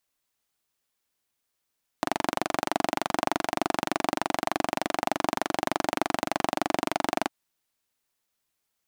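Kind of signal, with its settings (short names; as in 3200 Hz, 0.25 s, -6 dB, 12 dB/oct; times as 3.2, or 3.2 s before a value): single-cylinder engine model, steady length 5.27 s, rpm 2800, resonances 310/690 Hz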